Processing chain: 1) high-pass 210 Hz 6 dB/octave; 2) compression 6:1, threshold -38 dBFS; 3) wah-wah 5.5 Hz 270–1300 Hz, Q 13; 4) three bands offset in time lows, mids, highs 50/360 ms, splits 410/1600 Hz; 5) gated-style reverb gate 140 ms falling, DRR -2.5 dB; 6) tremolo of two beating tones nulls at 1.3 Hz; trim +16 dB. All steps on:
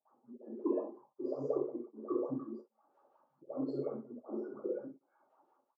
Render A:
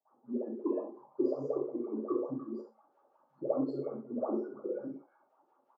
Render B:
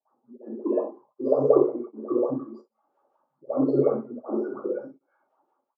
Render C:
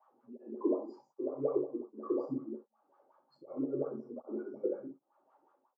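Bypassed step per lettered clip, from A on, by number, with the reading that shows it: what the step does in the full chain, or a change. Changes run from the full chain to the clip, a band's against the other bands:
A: 6, 125 Hz band -2.0 dB; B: 2, mean gain reduction 10.0 dB; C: 4, momentary loudness spread change +1 LU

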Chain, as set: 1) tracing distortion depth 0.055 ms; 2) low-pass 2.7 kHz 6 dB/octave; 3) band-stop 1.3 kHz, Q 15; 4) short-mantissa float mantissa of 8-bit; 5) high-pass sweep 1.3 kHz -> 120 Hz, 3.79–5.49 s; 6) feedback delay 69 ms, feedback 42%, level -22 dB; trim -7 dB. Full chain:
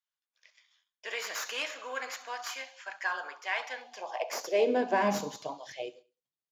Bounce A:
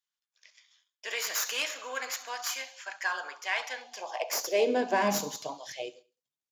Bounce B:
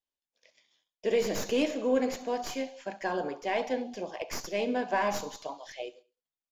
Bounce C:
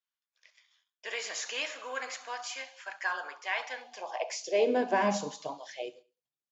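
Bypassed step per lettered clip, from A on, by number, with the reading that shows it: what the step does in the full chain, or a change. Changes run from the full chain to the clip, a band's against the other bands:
2, 8 kHz band +7.5 dB; 5, loudness change +1.5 LU; 1, 8 kHz band +1.5 dB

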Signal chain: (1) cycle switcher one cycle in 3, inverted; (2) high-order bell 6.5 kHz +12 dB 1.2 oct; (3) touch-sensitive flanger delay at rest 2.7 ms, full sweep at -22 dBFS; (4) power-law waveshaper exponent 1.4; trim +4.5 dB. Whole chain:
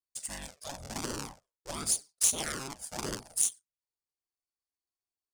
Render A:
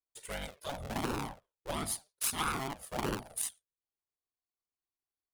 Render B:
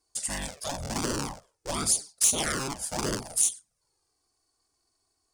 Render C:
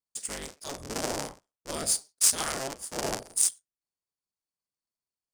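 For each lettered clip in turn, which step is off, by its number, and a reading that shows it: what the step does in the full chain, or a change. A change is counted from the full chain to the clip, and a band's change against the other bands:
2, crest factor change -6.5 dB; 4, crest factor change -5.0 dB; 3, 500 Hz band +3.5 dB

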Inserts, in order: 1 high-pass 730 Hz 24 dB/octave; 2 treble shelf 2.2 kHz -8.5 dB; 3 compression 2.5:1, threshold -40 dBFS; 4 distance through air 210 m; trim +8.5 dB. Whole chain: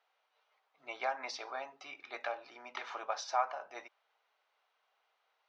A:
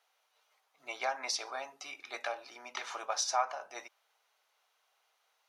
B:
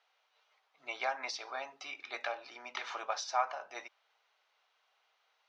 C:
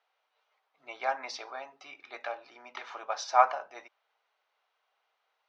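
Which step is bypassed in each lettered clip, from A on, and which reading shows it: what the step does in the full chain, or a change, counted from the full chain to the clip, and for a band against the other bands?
4, 4 kHz band +7.0 dB; 2, 4 kHz band +4.0 dB; 3, crest factor change +4.0 dB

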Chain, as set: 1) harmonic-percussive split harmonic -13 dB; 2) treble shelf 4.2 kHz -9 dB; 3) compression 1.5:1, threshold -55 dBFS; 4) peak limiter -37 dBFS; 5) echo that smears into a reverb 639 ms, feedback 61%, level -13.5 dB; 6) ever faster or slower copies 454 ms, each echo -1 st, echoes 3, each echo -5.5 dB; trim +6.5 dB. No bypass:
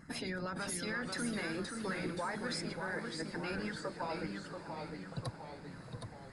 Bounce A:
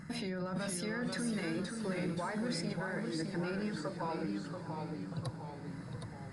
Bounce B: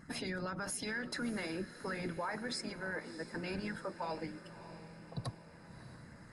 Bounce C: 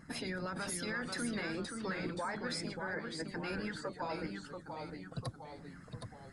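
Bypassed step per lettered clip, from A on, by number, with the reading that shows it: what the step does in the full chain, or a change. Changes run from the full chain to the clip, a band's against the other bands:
1, 125 Hz band +5.0 dB; 6, momentary loudness spread change +4 LU; 5, momentary loudness spread change +1 LU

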